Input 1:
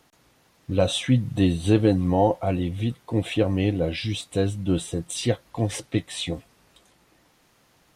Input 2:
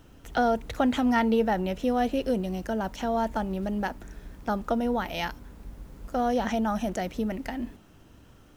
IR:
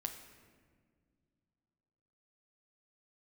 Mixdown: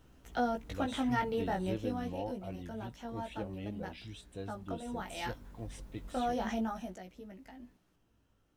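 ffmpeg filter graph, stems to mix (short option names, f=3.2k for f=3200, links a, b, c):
-filter_complex "[0:a]volume=-20dB[a];[1:a]flanger=delay=15.5:depth=5.8:speed=0.27,volume=2dB,afade=t=out:st=1.61:d=0.58:silence=0.473151,afade=t=in:st=4.79:d=0.6:silence=0.421697,afade=t=out:st=6.5:d=0.52:silence=0.266073[b];[a][b]amix=inputs=2:normalize=0"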